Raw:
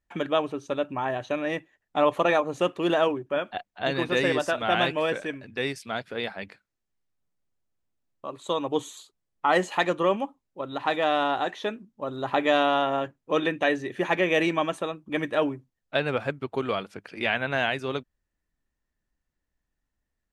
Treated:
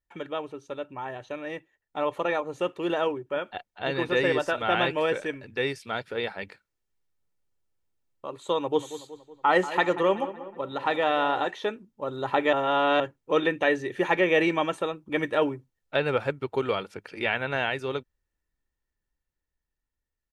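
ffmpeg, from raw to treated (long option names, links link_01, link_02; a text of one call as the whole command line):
ffmpeg -i in.wav -filter_complex "[0:a]asettb=1/sr,asplit=3[link_01][link_02][link_03];[link_01]atrim=end=8.604[link_04];[link_02]atrim=start=8.6:end=11.47,asetpts=PTS-STARTPTS,afade=type=in:duration=0.004:curve=qsin,afade=type=out:start_time=2.866:duration=0.004:curve=qsin,asplit=2[link_05][link_06];[link_06]adelay=186,lowpass=frequency=2400:poles=1,volume=-13dB,asplit=2[link_07][link_08];[link_08]adelay=186,lowpass=frequency=2400:poles=1,volume=0.55,asplit=2[link_09][link_10];[link_10]adelay=186,lowpass=frequency=2400:poles=1,volume=0.55,asplit=2[link_11][link_12];[link_12]adelay=186,lowpass=frequency=2400:poles=1,volume=0.55,asplit=2[link_13][link_14];[link_14]adelay=186,lowpass=frequency=2400:poles=1,volume=0.55,asplit=2[link_15][link_16];[link_16]adelay=186,lowpass=frequency=2400:poles=1,volume=0.55[link_17];[link_05][link_07][link_09][link_11][link_13][link_15][link_17]amix=inputs=7:normalize=0,atrim=end_sample=126567[link_18];[link_03]atrim=start=11.466[link_19];[link_04][link_18]acrossfade=duration=0.004:curve1=hsin:curve2=qsin[link_20];[link_20][link_19]acrossfade=duration=0.004:curve1=qsin:curve2=hsin,asplit=3[link_21][link_22][link_23];[link_21]atrim=end=12.532[link_24];[link_22]atrim=start=12.528:end=13.002,asetpts=PTS-STARTPTS,areverse[link_25];[link_23]atrim=start=12.998[link_26];[link_24][link_25]acrossfade=duration=0.004:curve1=hsin:curve2=hsin[link_27];[link_27][link_26]acrossfade=duration=0.004:curve1=hsin:curve2=hsin,acrossover=split=3700[link_28][link_29];[link_29]acompressor=threshold=-45dB:ratio=4:attack=1:release=60[link_30];[link_28][link_30]amix=inputs=2:normalize=0,aecho=1:1:2.2:0.33,dynaudnorm=framelen=940:gausssize=7:maxgain=11.5dB,volume=-7.5dB" out.wav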